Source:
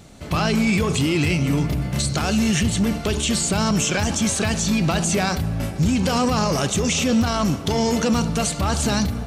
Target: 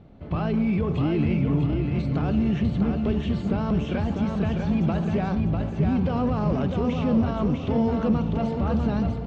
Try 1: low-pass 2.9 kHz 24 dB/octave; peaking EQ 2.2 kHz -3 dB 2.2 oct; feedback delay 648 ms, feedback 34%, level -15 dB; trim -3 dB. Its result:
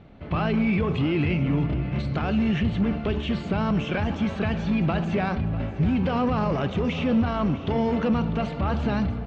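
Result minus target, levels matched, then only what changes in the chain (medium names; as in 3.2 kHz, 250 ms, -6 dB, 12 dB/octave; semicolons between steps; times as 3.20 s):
echo-to-direct -10.5 dB; 2 kHz band +7.0 dB
change: peaking EQ 2.2 kHz -11.5 dB 2.2 oct; change: feedback delay 648 ms, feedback 34%, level -4.5 dB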